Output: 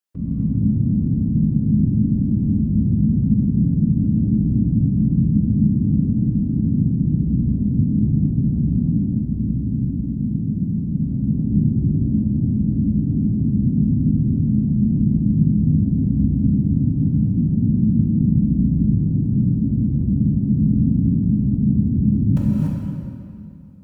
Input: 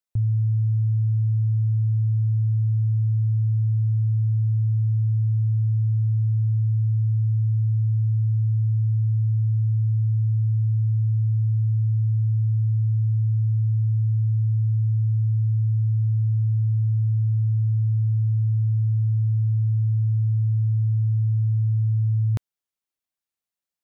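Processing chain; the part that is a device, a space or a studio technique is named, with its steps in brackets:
0:08.87–0:11.03: comb filter 5.5 ms, depth 75%
whispering ghost (random phases in short frames; high-pass filter 230 Hz 6 dB per octave; convolution reverb RT60 2.7 s, pre-delay 6 ms, DRR −3.5 dB)
reverb whose tail is shaped and stops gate 310 ms rising, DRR −1 dB

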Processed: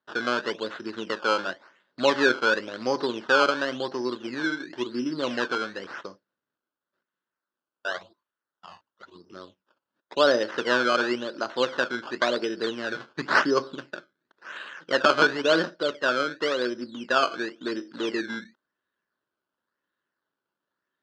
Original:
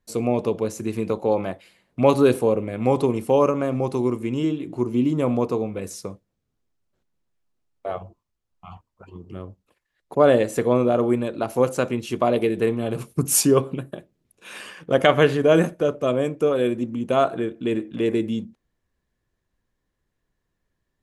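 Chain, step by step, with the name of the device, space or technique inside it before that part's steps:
circuit-bent sampling toy (sample-and-hold swept by an LFO 16×, swing 100% 0.94 Hz; loudspeaker in its box 410–4,800 Hz, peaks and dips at 460 Hz −6 dB, 740 Hz −8 dB, 1,500 Hz +8 dB, 2,300 Hz −9 dB)

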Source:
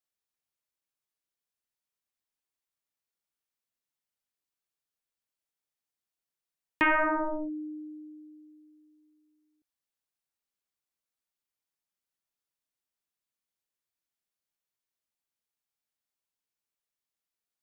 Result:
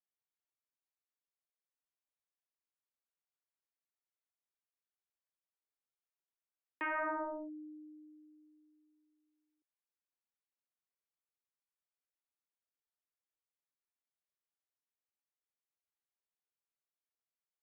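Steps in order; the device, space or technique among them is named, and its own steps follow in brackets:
DJ mixer with the lows and highs turned down (three-way crossover with the lows and the highs turned down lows −21 dB, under 280 Hz, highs −24 dB, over 2,800 Hz; brickwall limiter −23.5 dBFS, peak gain reduction 6.5 dB)
level −7 dB

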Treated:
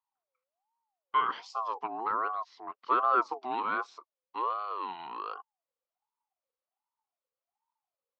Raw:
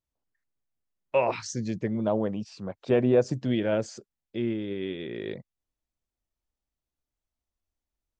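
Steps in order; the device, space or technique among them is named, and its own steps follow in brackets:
voice changer toy (ring modulator whose carrier an LFO sweeps 720 Hz, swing 30%, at 1.3 Hz; loudspeaker in its box 550–4,300 Hz, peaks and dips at 600 Hz −10 dB, 1,100 Hz +5 dB, 1,700 Hz −6 dB, 2,500 Hz −3 dB, 3,600 Hz −6 dB)

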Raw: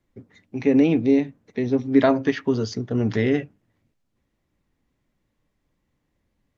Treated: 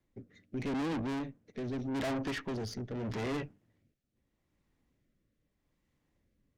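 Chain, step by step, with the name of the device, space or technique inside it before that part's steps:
overdriven rotary cabinet (tube saturation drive 32 dB, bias 0.55; rotating-speaker cabinet horn 0.8 Hz)

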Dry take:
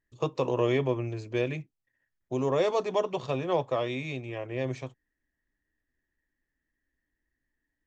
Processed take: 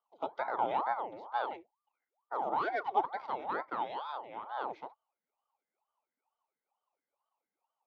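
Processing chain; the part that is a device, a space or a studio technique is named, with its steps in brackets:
voice changer toy (ring modulator whose carrier an LFO sweeps 690 Hz, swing 75%, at 2.2 Hz; loudspeaker in its box 440–3,600 Hz, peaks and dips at 870 Hz +9 dB, 1,700 Hz −10 dB, 2,700 Hz −9 dB)
0:02.62–0:03.03: comb filter 2.7 ms, depth 57%
level −4 dB

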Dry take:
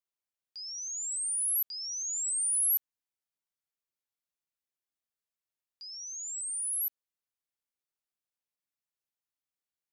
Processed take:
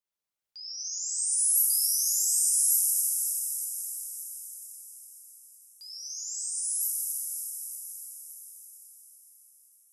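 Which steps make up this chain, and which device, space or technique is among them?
0:01.18–0:02.46: high-shelf EQ 7,900 Hz +5 dB
cathedral (convolution reverb RT60 5.7 s, pre-delay 3 ms, DRR −5 dB)
level −1.5 dB

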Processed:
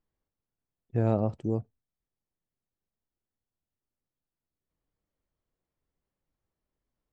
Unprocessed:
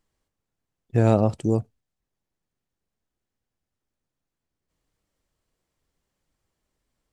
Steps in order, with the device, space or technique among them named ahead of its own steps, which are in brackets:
through cloth (low-pass filter 6,800 Hz 12 dB per octave; high-shelf EQ 2,500 Hz −12 dB)
level −7 dB

